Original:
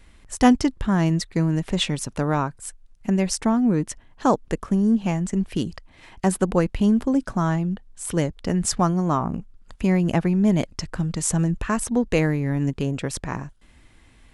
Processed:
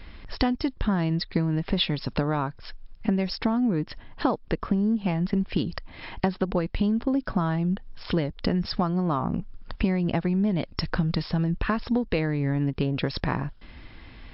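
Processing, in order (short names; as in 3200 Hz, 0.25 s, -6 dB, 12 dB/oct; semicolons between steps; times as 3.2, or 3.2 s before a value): dynamic EQ 4000 Hz, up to +5 dB, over -49 dBFS, Q 2.6; compressor 12:1, threshold -29 dBFS, peak gain reduction 19.5 dB; gain +8.5 dB; MP3 64 kbps 12000 Hz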